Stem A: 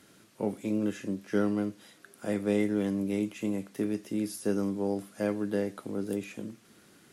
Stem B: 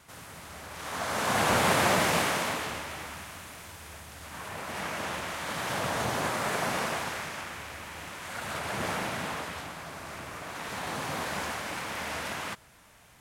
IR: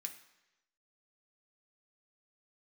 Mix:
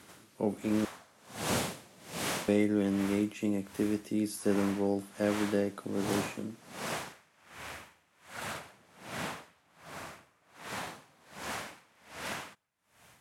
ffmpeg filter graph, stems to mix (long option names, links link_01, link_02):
-filter_complex "[0:a]volume=0dB,asplit=3[link_01][link_02][link_03];[link_01]atrim=end=0.85,asetpts=PTS-STARTPTS,afade=type=out:start_time=0.846:duration=0.004:curve=hsin[link_04];[link_02]atrim=start=0.85:end=2.48,asetpts=PTS-STARTPTS,volume=0[link_05];[link_03]atrim=start=2.48,asetpts=PTS-STARTPTS,afade=type=in:duration=0.004:curve=hsin[link_06];[link_04][link_05][link_06]concat=n=3:v=0:a=1[link_07];[1:a]highpass=88,acrossover=split=490|3000[link_08][link_09][link_10];[link_09]acompressor=threshold=-34dB:ratio=6[link_11];[link_08][link_11][link_10]amix=inputs=3:normalize=0,aeval=exprs='val(0)*pow(10,-29*(0.5-0.5*cos(2*PI*1.3*n/s))/20)':channel_layout=same,volume=-1dB,asplit=2[link_12][link_13];[link_13]volume=-22.5dB[link_14];[2:a]atrim=start_sample=2205[link_15];[link_14][link_15]afir=irnorm=-1:irlink=0[link_16];[link_07][link_12][link_16]amix=inputs=3:normalize=0,equalizer=frequency=15000:width=4.7:gain=-4"